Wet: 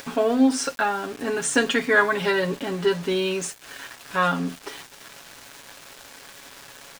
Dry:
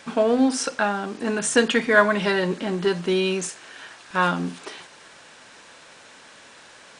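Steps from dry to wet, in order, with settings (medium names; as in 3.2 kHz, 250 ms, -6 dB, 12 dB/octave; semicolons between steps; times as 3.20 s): comb 7.2 ms, depth 63%; in parallel at +1 dB: upward compressor, threshold -25 dBFS; on the sum: small samples zeroed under -29 dBFS; trim -8.5 dB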